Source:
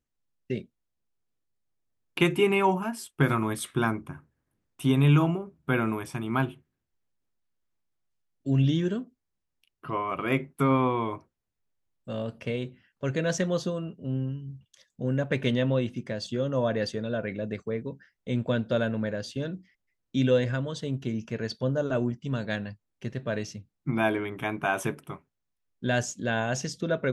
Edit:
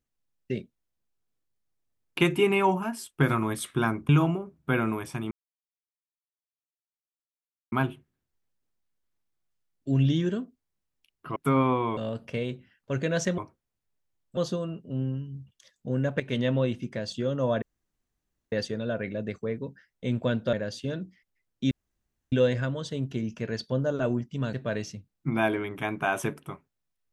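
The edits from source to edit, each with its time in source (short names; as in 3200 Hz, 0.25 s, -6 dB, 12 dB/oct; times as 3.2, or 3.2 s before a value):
4.09–5.09 cut
6.31 insert silence 2.41 s
9.95–10.5 cut
11.11–12.1 move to 13.51
15.34–15.68 fade in equal-power, from -13 dB
16.76 insert room tone 0.90 s
18.77–19.05 cut
20.23 insert room tone 0.61 s
22.44–23.14 cut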